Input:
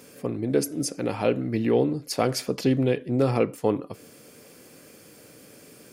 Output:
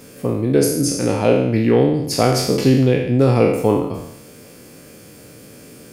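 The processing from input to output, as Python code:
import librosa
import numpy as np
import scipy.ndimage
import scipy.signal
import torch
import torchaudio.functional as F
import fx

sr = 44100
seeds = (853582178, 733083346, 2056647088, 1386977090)

y = fx.spec_trails(x, sr, decay_s=0.84)
y = fx.low_shelf(y, sr, hz=160.0, db=10.0)
y = y * librosa.db_to_amplitude(4.0)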